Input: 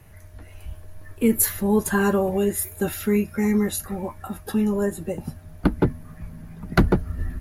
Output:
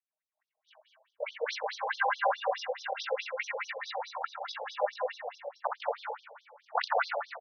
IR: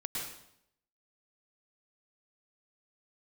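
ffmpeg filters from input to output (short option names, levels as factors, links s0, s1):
-filter_complex "[0:a]highpass=72,agate=range=0.00891:threshold=0.0126:ratio=16:detection=peak,bandreject=f=60:t=h:w=6,bandreject=f=120:t=h:w=6,bandreject=f=180:t=h:w=6,bandreject=f=240:t=h:w=6,bandreject=f=300:t=h:w=6,bandreject=f=360:t=h:w=6,bandreject=f=420:t=h:w=6,bandreject=f=480:t=h:w=6,bandreject=f=540:t=h:w=6,bandreject=f=600:t=h:w=6,acrossover=split=270|3000[s0][s1][s2];[s0]acompressor=threshold=0.0891:ratio=6[s3];[s3][s1][s2]amix=inputs=3:normalize=0,tremolo=f=45:d=0.667,asplit=2[s4][s5];[s5]asetrate=55563,aresample=44100,atempo=0.793701,volume=0.316[s6];[s4][s6]amix=inputs=2:normalize=0,asplit=2[s7][s8];[s8]adelay=35,volume=0.211[s9];[s7][s9]amix=inputs=2:normalize=0,aecho=1:1:368|736:0.133|0.02,asplit=2[s10][s11];[1:a]atrim=start_sample=2205,adelay=62[s12];[s11][s12]afir=irnorm=-1:irlink=0,volume=0.708[s13];[s10][s13]amix=inputs=2:normalize=0,aresample=16000,aresample=44100,alimiter=level_in=4.47:limit=0.891:release=50:level=0:latency=1,afftfilt=real='re*between(b*sr/1024,630*pow(4600/630,0.5+0.5*sin(2*PI*4.7*pts/sr))/1.41,630*pow(4600/630,0.5+0.5*sin(2*PI*4.7*pts/sr))*1.41)':imag='im*between(b*sr/1024,630*pow(4600/630,0.5+0.5*sin(2*PI*4.7*pts/sr))/1.41,630*pow(4600/630,0.5+0.5*sin(2*PI*4.7*pts/sr))*1.41)':win_size=1024:overlap=0.75,volume=0.501"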